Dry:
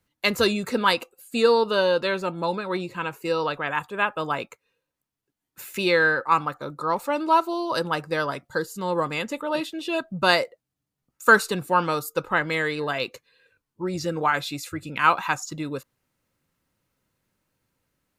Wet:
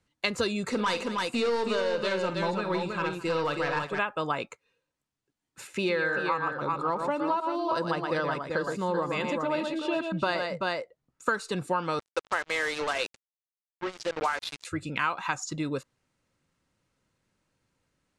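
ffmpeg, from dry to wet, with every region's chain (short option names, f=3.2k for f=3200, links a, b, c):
-filter_complex "[0:a]asettb=1/sr,asplit=3[a][b][c];[a]atrim=end=0.684[d];[b]atrim=start=0.68:end=3.99,asetpts=PTS-STARTPTS,afade=t=in:d=0.004:c=qsin,afade=t=out:st=3.306:d=0.004:c=qsin,aeval=exprs='(tanh(8.91*val(0)+0.1)-tanh(0.1))/8.91':c=same,aecho=1:1:47|211|321:0.299|0.133|0.562,atrim=end_sample=145971[e];[c]atrim=start=3.986[f];[d][e]acrossfade=d=0.004:c1=hsin:c2=qsin[g];[g][f]acrossfade=d=0.004:c1=qsin:c2=hsin,asettb=1/sr,asplit=3[h][i][j];[h]atrim=end=5.674[k];[i]atrim=start=5.67:end=11.29,asetpts=PTS-STARTPTS,afade=t=in:d=0.004:c=qsin,afade=t=out:st=5.616:d=0.004:c=qsin,highshelf=f=3.4k:g=-8,aecho=1:1:118|385:0.447|0.422,atrim=end_sample=247842[l];[j]atrim=start=11.286[m];[k][l]acrossfade=d=0.004:c1=hsin:c2=qsin[n];[n][m]acrossfade=d=0.004:c1=qsin:c2=hsin,asettb=1/sr,asplit=3[o][p][q];[o]atrim=end=11.994[r];[p]atrim=start=11.99:end=14.65,asetpts=PTS-STARTPTS,afade=t=in:d=0.004:c=qsin,afade=t=out:st=2.656:d=0.004:c=qsin,highpass=41,acrossover=split=360 6100:gain=0.0708 1 0.158[s][t][u];[s][t][u]amix=inputs=3:normalize=0,acrusher=bits=4:mix=0:aa=0.5[v];[q]atrim=start=14.646[w];[r][v]acrossfade=d=0.004:c1=hsin:c2=qsin[x];[x][w]acrossfade=d=0.004:c1=qsin:c2=hsin,lowpass=f=9.1k:w=0.5412,lowpass=f=9.1k:w=1.3066,acompressor=threshold=-24dB:ratio=10"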